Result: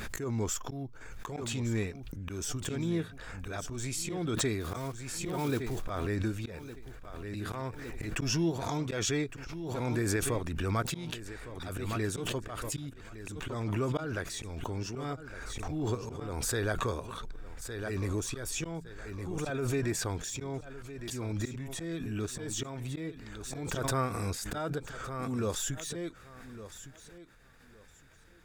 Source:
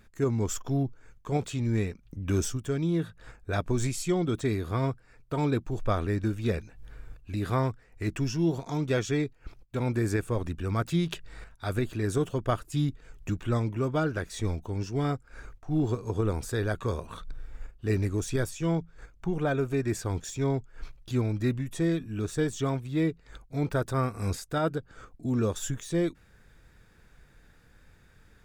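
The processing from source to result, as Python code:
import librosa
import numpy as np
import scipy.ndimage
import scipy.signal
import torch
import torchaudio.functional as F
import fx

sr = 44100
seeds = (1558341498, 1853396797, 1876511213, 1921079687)

p1 = fx.block_float(x, sr, bits=5, at=(4.6, 5.83), fade=0.02)
p2 = fx.low_shelf(p1, sr, hz=430.0, db=-6.0)
p3 = fx.auto_swell(p2, sr, attack_ms=252.0)
p4 = p3 + fx.echo_feedback(p3, sr, ms=1160, feedback_pct=23, wet_db=-14, dry=0)
y = fx.pre_swell(p4, sr, db_per_s=24.0)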